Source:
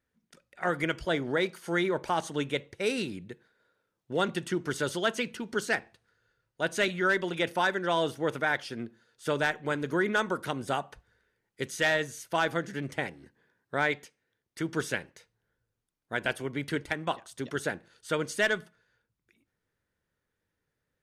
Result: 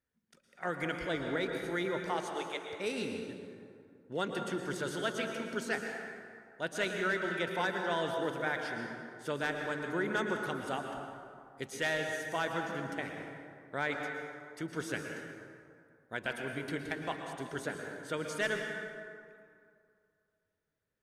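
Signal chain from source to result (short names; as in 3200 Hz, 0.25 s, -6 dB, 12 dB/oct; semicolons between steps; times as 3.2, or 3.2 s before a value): 2.08–2.62 HPF 180 Hz -> 610 Hz 24 dB/oct; plate-style reverb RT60 2.3 s, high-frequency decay 0.5×, pre-delay 0.1 s, DRR 3 dB; gain -7 dB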